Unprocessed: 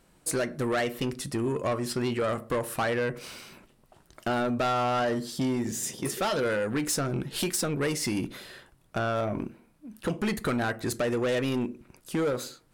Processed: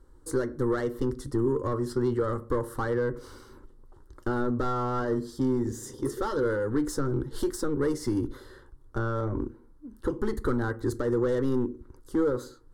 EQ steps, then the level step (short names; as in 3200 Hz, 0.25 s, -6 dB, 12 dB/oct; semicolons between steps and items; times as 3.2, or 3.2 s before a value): tilt -3 dB/oct; fixed phaser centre 670 Hz, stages 6; 0.0 dB